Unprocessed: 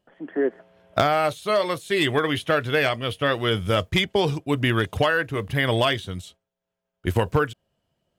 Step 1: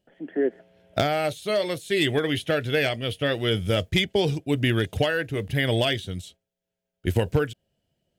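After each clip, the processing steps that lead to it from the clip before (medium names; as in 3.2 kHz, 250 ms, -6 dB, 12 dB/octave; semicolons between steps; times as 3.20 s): peaking EQ 1.1 kHz -14 dB 0.7 oct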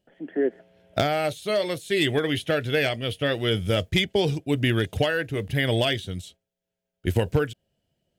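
no audible change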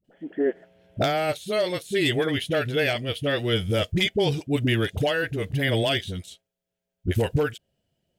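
phase dispersion highs, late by 45 ms, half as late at 430 Hz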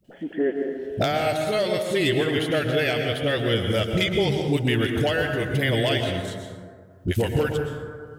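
plate-style reverb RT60 1.4 s, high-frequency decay 0.4×, pre-delay 100 ms, DRR 4.5 dB; three bands compressed up and down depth 40%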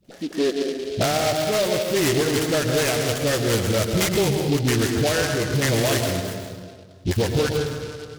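saturation -15 dBFS, distortion -20 dB; delay time shaken by noise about 3.5 kHz, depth 0.079 ms; trim +3 dB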